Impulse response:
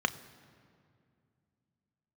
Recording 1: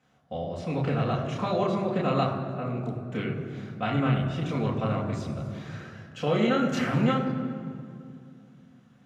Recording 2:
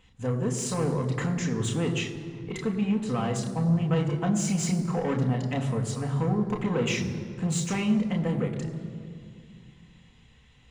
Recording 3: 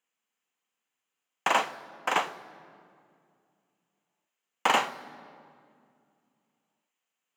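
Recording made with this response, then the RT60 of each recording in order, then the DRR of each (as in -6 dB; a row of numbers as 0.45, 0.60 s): 3; 2.3, 2.3, 2.3 s; -5.0, 1.5, 10.5 dB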